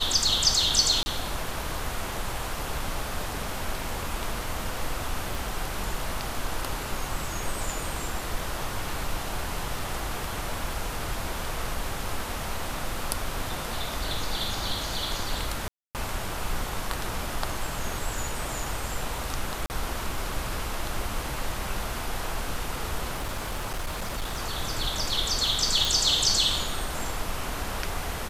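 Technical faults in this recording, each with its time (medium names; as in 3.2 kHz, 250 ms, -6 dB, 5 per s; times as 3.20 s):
1.03–1.06 s: dropout 30 ms
5.35 s: pop
15.68–15.95 s: dropout 268 ms
19.66–19.70 s: dropout 39 ms
23.15–24.40 s: clipped -26.5 dBFS
25.85 s: pop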